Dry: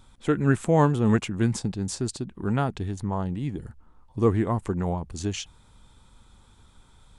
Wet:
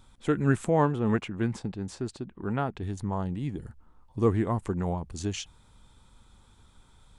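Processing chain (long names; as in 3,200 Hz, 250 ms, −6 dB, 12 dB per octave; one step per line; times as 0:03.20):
0:00.69–0:02.83: bass and treble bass −4 dB, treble −12 dB
level −2.5 dB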